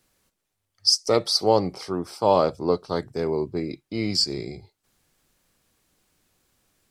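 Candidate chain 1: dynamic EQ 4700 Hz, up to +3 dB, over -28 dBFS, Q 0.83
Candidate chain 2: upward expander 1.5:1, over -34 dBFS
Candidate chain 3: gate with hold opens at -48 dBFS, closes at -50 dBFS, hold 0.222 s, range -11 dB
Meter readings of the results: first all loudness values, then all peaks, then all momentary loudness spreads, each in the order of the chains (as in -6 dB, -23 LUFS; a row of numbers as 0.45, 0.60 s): -22.0, -25.0, -23.5 LUFS; -3.0, -6.0, -5.5 dBFS; 14, 16, 11 LU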